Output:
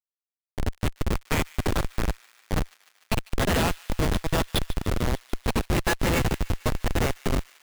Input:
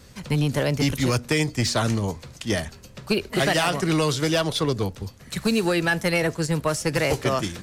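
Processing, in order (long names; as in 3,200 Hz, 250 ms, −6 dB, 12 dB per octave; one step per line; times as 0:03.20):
in parallel at +2 dB: brickwall limiter −23.5 dBFS, peak gain reduction 10.5 dB
on the sum: low-pass filter 3,600 Hz 24 dB per octave
low-shelf EQ 79 Hz −5 dB
feedback delay with all-pass diffusion 532 ms, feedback 46%, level −8 dB
harmonic generator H 5 −31 dB, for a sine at −4 dBFS
noise reduction from a noise print of the clip's start 24 dB
delay with pitch and tempo change per echo 227 ms, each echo −5 semitones, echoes 2
spectral tilt +4.5 dB per octave
comparator with hysteresis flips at −12.5 dBFS
delay with a high-pass on its return 148 ms, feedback 74%, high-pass 1,800 Hz, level −15.5 dB
expander for the loud parts 1.5 to 1, over −29 dBFS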